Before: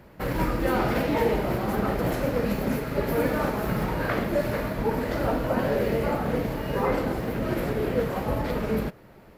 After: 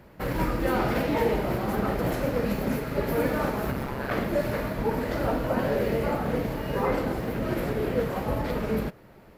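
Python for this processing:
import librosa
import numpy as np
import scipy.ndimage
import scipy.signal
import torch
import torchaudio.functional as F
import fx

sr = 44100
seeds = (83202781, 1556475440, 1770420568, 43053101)

y = fx.ring_mod(x, sr, carrier_hz=67.0, at=(3.71, 4.11))
y = y * librosa.db_to_amplitude(-1.0)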